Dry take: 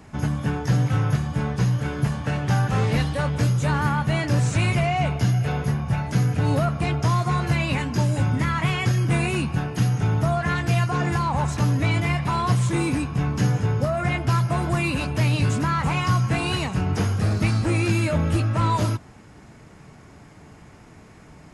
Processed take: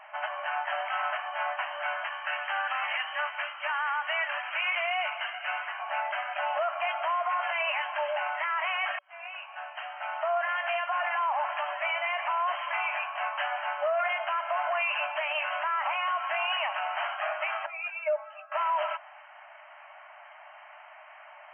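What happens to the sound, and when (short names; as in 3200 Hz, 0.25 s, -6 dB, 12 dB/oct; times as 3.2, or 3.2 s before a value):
2.04–5.8 HPF 1100 Hz
8.99–10.77 fade in
17.66–18.52 spectral contrast raised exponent 1.7
whole clip: FFT band-pass 580–3200 Hz; limiter -25.5 dBFS; gain +4.5 dB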